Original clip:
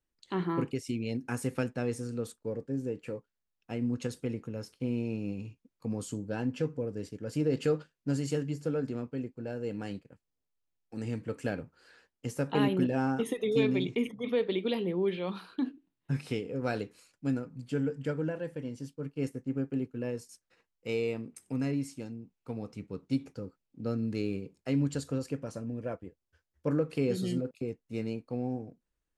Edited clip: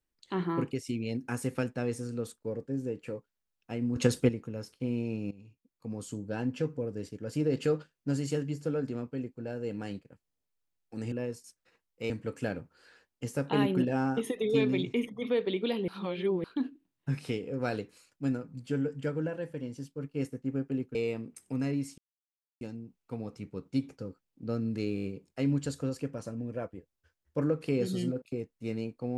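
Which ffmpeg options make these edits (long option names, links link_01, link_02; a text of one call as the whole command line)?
ffmpeg -i in.wav -filter_complex "[0:a]asplit=14[link_01][link_02][link_03][link_04][link_05][link_06][link_07][link_08][link_09][link_10][link_11][link_12][link_13][link_14];[link_01]atrim=end=3.962[link_15];[link_02]atrim=start=3.958:end=4.292,asetpts=PTS-STARTPTS,volume=10dB[link_16];[link_03]atrim=start=4.288:end=5.31,asetpts=PTS-STARTPTS,afade=type=out:start_time=1.018:duration=0.004:curve=hsin:silence=0.158489[link_17];[link_04]atrim=start=5.31:end=11.122,asetpts=PTS-STARTPTS,afade=type=in:duration=1.06:silence=0.158489[link_18];[link_05]atrim=start=19.968:end=20.952[link_19];[link_06]atrim=start=11.118:end=14.902[link_20];[link_07]atrim=start=14.898:end=15.462,asetpts=PTS-STARTPTS,areverse[link_21];[link_08]atrim=start=15.458:end=19.972[link_22];[link_09]atrim=start=20.948:end=21.98,asetpts=PTS-STARTPTS,afade=type=out:start_time=1.028:duration=0.004:curve=hsin,apad=pad_dur=0.63[link_23];[link_10]atrim=start=21.98:end=24.352,asetpts=PTS-STARTPTS,afade=type=in:duration=0.004:curve=hsin[link_24];[link_11]atrim=start=24.328:end=24.352[link_25];[link_12]atrim=start=24.328:end=24.352[link_26];[link_13]atrim=start=24.328:end=24.352[link_27];[link_14]atrim=start=24.328[link_28];[link_15][link_16]acrossfade=duration=0.004:curve1=hsin:curve2=hsin[link_29];[link_17][link_18]concat=n=2:v=0:a=1[link_30];[link_29][link_30]acrossfade=duration=0.004:curve1=hsin:curve2=hsin[link_31];[link_31][link_19]acrossfade=duration=0.004:curve1=hsin:curve2=hsin[link_32];[link_32][link_20]acrossfade=duration=0.004:curve1=hsin:curve2=hsin[link_33];[link_33][link_21]acrossfade=duration=0.004:curve1=hsin:curve2=hsin[link_34];[link_34][link_22]acrossfade=duration=0.004:curve1=hsin:curve2=hsin[link_35];[link_23][link_24]concat=n=2:v=0:a=1[link_36];[link_35][link_36]acrossfade=duration=0.004:curve1=hsin:curve2=hsin[link_37];[link_37][link_25]acrossfade=duration=0.004:curve1=hsin:curve2=hsin[link_38];[link_38][link_26]acrossfade=duration=0.004:curve1=hsin:curve2=hsin[link_39];[link_39][link_27]acrossfade=duration=0.004:curve1=hsin:curve2=hsin[link_40];[link_40][link_28]acrossfade=duration=0.004:curve1=hsin:curve2=hsin" out.wav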